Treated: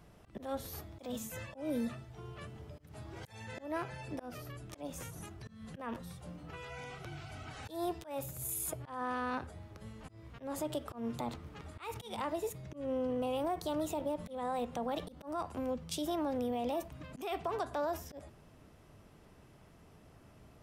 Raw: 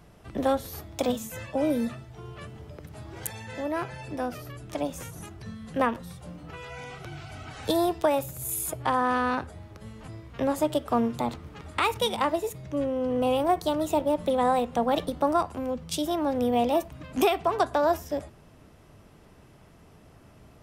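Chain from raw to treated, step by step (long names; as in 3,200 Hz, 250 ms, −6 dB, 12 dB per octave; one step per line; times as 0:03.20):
brickwall limiter −22 dBFS, peak gain reduction 8.5 dB
volume swells 176 ms
level −5.5 dB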